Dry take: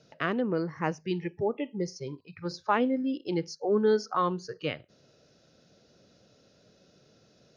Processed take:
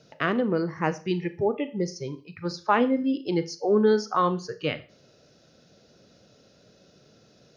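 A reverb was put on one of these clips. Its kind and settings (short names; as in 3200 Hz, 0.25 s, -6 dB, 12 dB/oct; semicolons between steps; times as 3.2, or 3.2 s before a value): Schroeder reverb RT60 0.38 s, combs from 26 ms, DRR 13 dB; gain +4 dB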